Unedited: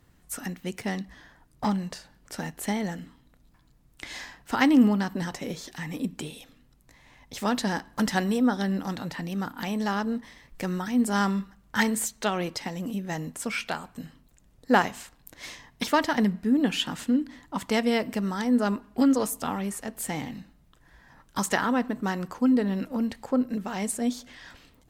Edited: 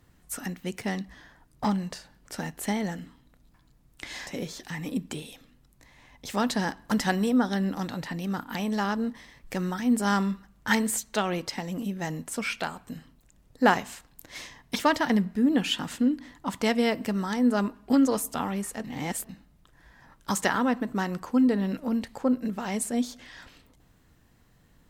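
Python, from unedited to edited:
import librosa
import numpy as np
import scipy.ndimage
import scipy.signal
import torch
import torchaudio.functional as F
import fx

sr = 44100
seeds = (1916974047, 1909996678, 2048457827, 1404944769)

y = fx.edit(x, sr, fx.cut(start_s=4.27, length_s=1.08),
    fx.reverse_span(start_s=19.92, length_s=0.45), tone=tone)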